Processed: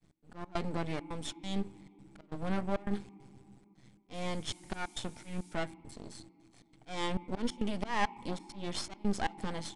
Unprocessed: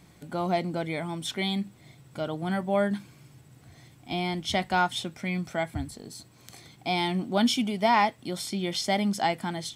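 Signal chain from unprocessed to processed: expander -47 dBFS; low shelf 280 Hz +6 dB; auto swell 0.195 s; half-wave rectifier; step gate "x.xx.xxx" 136 bpm -24 dB; 4.13–5.53 added noise violet -49 dBFS; on a send at -4 dB: vowel filter u + reverb RT60 3.1 s, pre-delay 6 ms; on the sum: downsampling 22050 Hz; gain -3 dB

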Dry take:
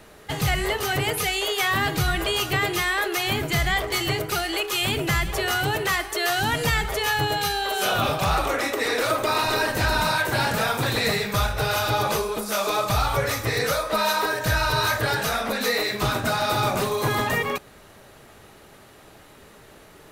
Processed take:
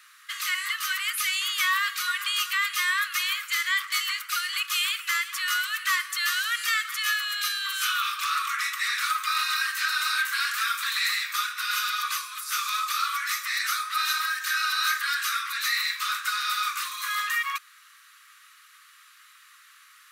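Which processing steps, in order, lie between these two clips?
Chebyshev high-pass 1100 Hz, order 8

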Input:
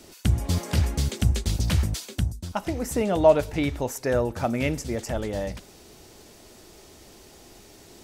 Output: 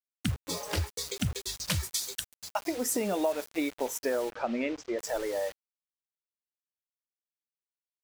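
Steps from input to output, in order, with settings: 1.68–3.49 high shelf 3400 Hz +7.5 dB; spectral noise reduction 30 dB; compressor 8:1, threshold -26 dBFS, peak gain reduction 15 dB; bit-crush 7-bit; 4.32–4.99 air absorption 170 m

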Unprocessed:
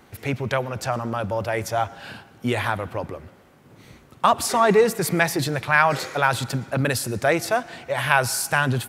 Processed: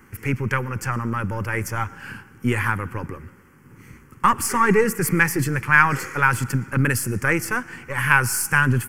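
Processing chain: half-wave gain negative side -3 dB; fixed phaser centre 1600 Hz, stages 4; gain +5.5 dB

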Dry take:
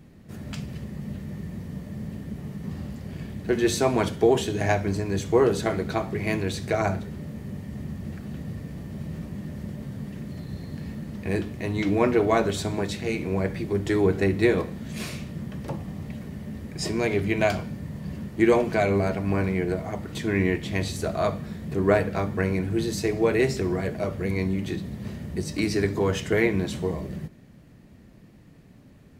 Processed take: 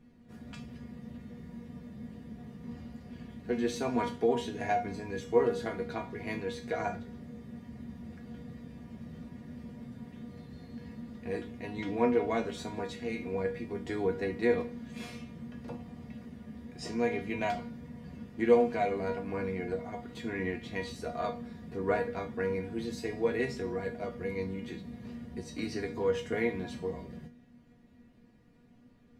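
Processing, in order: high shelf 6100 Hz -11.5 dB; notches 50/100/150/200 Hz; resonator 240 Hz, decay 0.23 s, harmonics all, mix 90%; gain +3.5 dB

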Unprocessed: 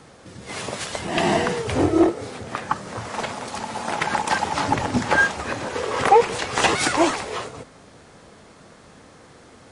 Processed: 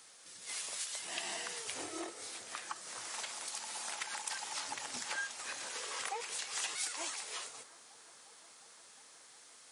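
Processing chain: differentiator; compressor 3:1, threshold -40 dBFS, peak gain reduction 13 dB; on a send: analogue delay 0.357 s, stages 4096, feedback 83%, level -21 dB; on the sum: gain +1 dB

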